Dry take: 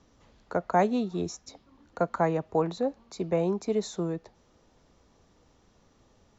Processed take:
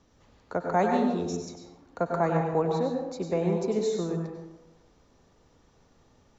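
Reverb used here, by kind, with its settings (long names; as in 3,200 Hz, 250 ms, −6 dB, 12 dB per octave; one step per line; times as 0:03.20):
dense smooth reverb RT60 0.96 s, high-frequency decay 0.5×, pre-delay 85 ms, DRR 1.5 dB
level −1.5 dB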